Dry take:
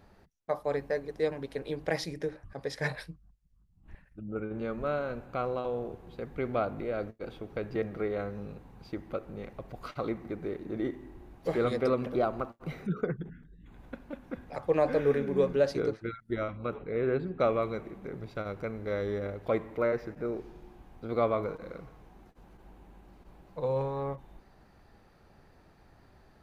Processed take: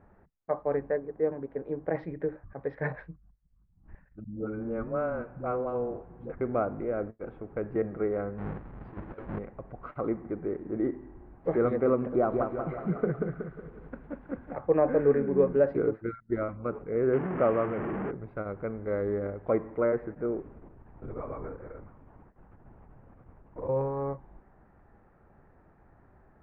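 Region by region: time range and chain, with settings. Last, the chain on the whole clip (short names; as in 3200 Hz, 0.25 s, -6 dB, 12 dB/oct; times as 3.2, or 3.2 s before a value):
0.96–1.95 LPF 1200 Hz 6 dB/oct + low shelf 87 Hz -8.5 dB
4.24–6.41 air absorption 70 m + notch 410 Hz + dispersion highs, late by 0.112 s, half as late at 330 Hz
8.38–9.39 half-waves squared off + negative-ratio compressor -36 dBFS, ratio -0.5
12.06–14.61 block floating point 7-bit + delay with a stepping band-pass 0.107 s, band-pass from 4500 Hz, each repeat -0.7 oct, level -5 dB + lo-fi delay 0.185 s, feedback 55%, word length 9-bit, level -4 dB
17.13–18.11 delta modulation 16 kbps, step -28 dBFS + HPF 61 Hz
20.38–23.69 bell 650 Hz -4 dB 0.44 oct + compressor 10:1, threshold -33 dBFS + LPC vocoder at 8 kHz whisper
whole clip: LPF 1800 Hz 24 dB/oct; dynamic EQ 320 Hz, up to +4 dB, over -38 dBFS, Q 0.92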